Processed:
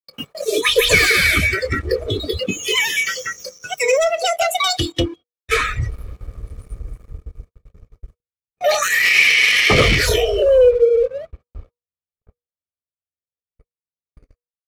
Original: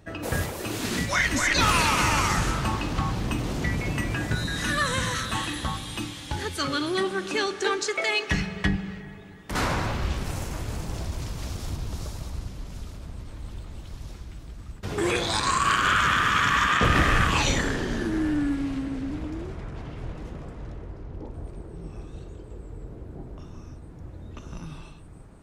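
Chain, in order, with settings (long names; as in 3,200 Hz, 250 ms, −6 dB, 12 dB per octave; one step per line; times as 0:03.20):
noise reduction from a noise print of the clip's start 25 dB
noise gate −52 dBFS, range −43 dB
high-shelf EQ 5,100 Hz −6 dB
comb filter 2.9 ms, depth 32%
hum removal 276.7 Hz, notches 2
leveller curve on the samples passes 2
hollow resonant body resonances 260/710/1,300 Hz, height 11 dB, ringing for 45 ms
wrong playback speed 45 rpm record played at 78 rpm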